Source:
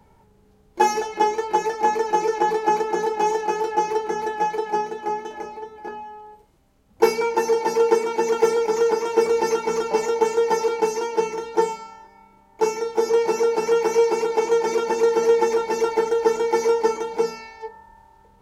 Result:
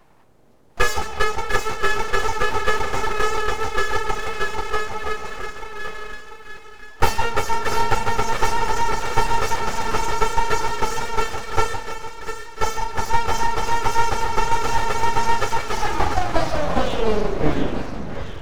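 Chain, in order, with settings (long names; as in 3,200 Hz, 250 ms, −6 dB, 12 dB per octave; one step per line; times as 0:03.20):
turntable brake at the end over 2.79 s
echo with a time of its own for lows and highs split 480 Hz, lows 160 ms, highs 696 ms, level −7 dB
full-wave rectification
level +2.5 dB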